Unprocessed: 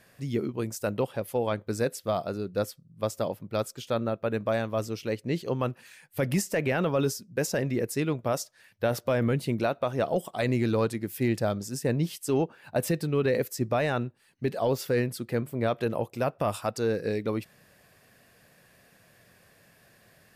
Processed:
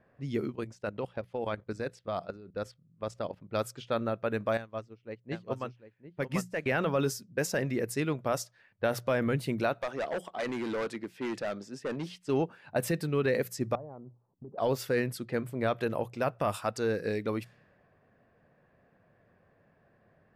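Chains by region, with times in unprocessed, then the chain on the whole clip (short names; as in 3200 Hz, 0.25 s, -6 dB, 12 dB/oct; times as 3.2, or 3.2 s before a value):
0.55–3.49 high shelf 12000 Hz -6 dB + level quantiser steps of 15 dB + mismatched tape noise reduction encoder only
4.57–6.66 echo 0.743 s -5 dB + upward expander 2.5:1, over -35 dBFS
9.81–12.11 HPF 240 Hz + overloaded stage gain 27 dB
13.75–14.58 steep low-pass 1100 Hz 48 dB/oct + compressor 12:1, threshold -38 dBFS
whole clip: low-pass opened by the level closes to 1100 Hz, open at -26 dBFS; notches 60/120/180 Hz; dynamic EQ 1600 Hz, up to +4 dB, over -44 dBFS, Q 1; gain -3 dB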